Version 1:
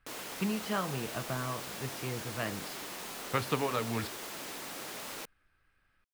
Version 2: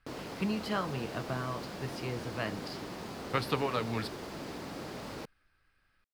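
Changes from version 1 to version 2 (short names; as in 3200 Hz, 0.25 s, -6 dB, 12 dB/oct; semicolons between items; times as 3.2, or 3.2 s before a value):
background: add tilt -4 dB/oct; master: add bell 4700 Hz +6.5 dB 0.49 oct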